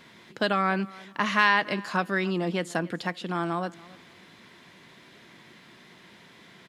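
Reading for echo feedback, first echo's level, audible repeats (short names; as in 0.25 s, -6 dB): 27%, -21.5 dB, 2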